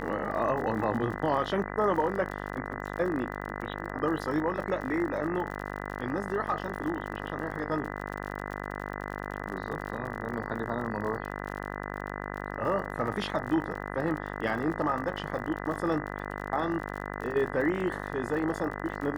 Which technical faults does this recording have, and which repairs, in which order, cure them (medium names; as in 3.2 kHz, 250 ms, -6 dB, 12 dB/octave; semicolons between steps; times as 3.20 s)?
buzz 50 Hz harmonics 40 -37 dBFS
crackle 49 per s -37 dBFS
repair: de-click; de-hum 50 Hz, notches 40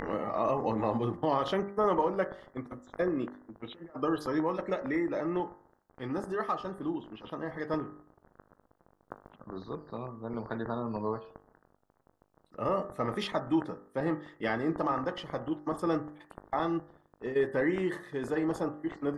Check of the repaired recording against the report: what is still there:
nothing left